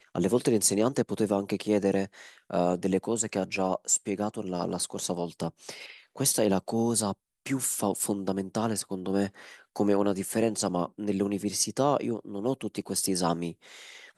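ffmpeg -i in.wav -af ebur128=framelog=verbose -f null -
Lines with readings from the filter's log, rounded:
Integrated loudness:
  I:         -28.4 LUFS
  Threshold: -38.8 LUFS
Loudness range:
  LRA:         2.0 LU
  Threshold: -49.0 LUFS
  LRA low:   -29.8 LUFS
  LRA high:  -27.8 LUFS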